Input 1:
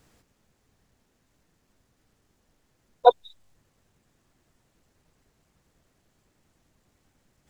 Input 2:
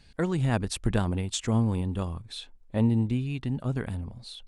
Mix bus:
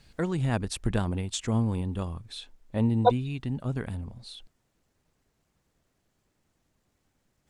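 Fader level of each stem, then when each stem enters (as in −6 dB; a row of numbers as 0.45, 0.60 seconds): −5.5, −1.5 decibels; 0.00, 0.00 seconds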